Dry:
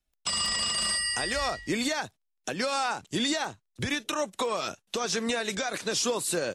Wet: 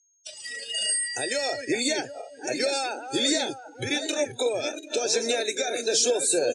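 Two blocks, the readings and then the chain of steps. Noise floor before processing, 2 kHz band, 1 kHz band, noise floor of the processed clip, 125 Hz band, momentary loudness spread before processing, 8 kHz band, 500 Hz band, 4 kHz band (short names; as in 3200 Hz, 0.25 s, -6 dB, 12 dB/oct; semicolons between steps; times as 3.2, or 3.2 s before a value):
-79 dBFS, +0.5 dB, -2.5 dB, -49 dBFS, -4.0 dB, 8 LU, +4.5 dB, +5.5 dB, +2.0 dB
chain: regenerating reverse delay 0.37 s, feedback 60%, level -7.5 dB; whine 6500 Hz -47 dBFS; echo 1.148 s -20 dB; spectral noise reduction 22 dB; dynamic EQ 7900 Hz, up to +4 dB, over -48 dBFS, Q 3.2; Chebyshev band-pass 110–9500 Hz, order 4; fixed phaser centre 460 Hz, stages 4; gain +6 dB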